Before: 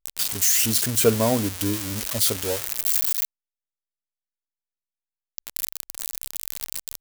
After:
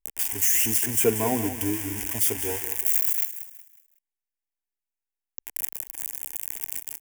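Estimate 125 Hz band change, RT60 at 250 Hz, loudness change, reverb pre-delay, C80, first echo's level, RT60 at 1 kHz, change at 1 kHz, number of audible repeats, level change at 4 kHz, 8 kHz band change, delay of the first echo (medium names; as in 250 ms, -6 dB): -6.0 dB, no reverb, -1.5 dB, no reverb, no reverb, -11.5 dB, no reverb, -2.0 dB, 3, -9.5 dB, -2.5 dB, 184 ms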